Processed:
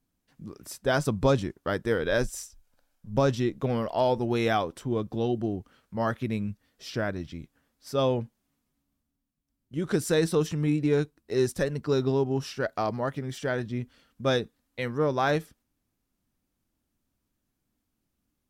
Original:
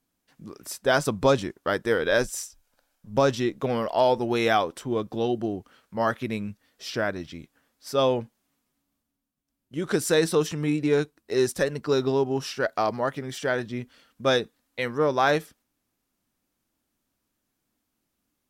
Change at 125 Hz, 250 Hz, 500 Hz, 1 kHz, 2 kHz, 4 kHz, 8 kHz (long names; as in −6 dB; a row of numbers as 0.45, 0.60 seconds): +3.0, −0.5, −3.0, −4.5, −5.0, −5.0, −5.0 decibels